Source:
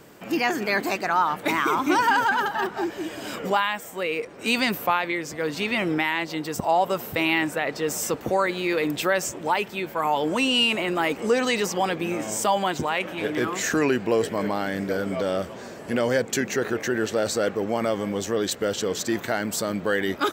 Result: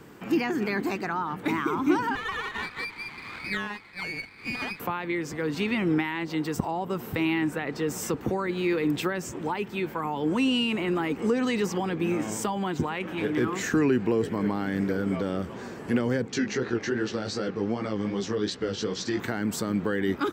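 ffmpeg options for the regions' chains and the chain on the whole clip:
-filter_complex "[0:a]asettb=1/sr,asplit=3[a][b][c];[a]atrim=end=2.154[d];[b]atrim=start=2.15:end=4.8,asetpts=PTS-STARTPTS,afade=t=in:d=0.004:c=qsin,afade=t=out:st=2.646:d=0.004:c=qsin,lowpass=f=2.3k:t=q:w=0.5098,lowpass=f=2.3k:t=q:w=0.6013,lowpass=f=2.3k:t=q:w=0.9,lowpass=f=2.3k:t=q:w=2.563,afreqshift=-2700,aeval=exprs='max(val(0),0)':c=same,highpass=f=100:p=1[e];[c]atrim=start=4.796[f];[d][e]acrossfade=d=0.004:c1=hsin:c2=qsin[g];[g][f]acrossfade=d=0.004:c1=qsin:c2=hsin,asettb=1/sr,asplit=3[h][i][j];[h]atrim=end=16.284[k];[i]atrim=start=16.28:end=19.2,asetpts=PTS-STARTPTS,afade=t=in:d=0.004:c=qsin,afade=t=out:st=2.916:d=0.004:c=qsin,flanger=delay=15:depth=5:speed=2.6,lowpass=f=5.1k:t=q:w=2.3[l];[j]atrim=start=19.196[m];[k][l]acrossfade=d=0.004:c1=hsin:c2=qsin[n];[n][m]acrossfade=d=0.004:c1=qsin:c2=hsin,highshelf=f=2.5k:g=-9,acrossover=split=390[o][p];[p]acompressor=threshold=-32dB:ratio=3[q];[o][q]amix=inputs=2:normalize=0,equalizer=f=610:t=o:w=0.51:g=-10,volume=3dB"

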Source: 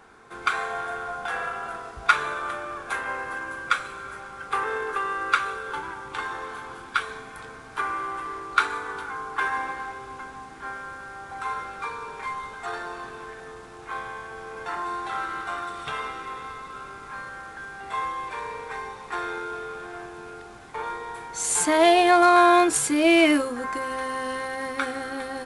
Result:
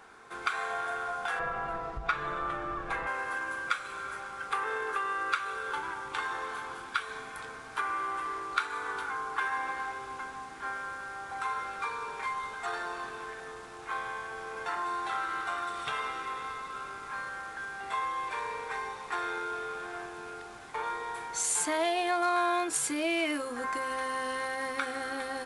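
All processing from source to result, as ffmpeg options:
-filter_complex "[0:a]asettb=1/sr,asplit=3[a][b][c];[a]atrim=end=1.394[d];[b]atrim=start=1.39:end=3.07,asetpts=PTS-STARTPTS,afade=t=in:d=0.004:c=qsin,afade=t=out:st=1.676:d=0.004:c=qsin,aemphasis=mode=reproduction:type=riaa,bandreject=f=1.5k:w=17,aecho=1:1:6.1:0.65,atrim=end_sample=74088[e];[c]atrim=start=3.066[f];[d][e]acrossfade=d=0.004:c1=hsin:c2=qsin[g];[g][f]acrossfade=d=0.004:c1=qsin:c2=hsin,acompressor=threshold=-29dB:ratio=2.5,lowshelf=f=410:g=-7.5"

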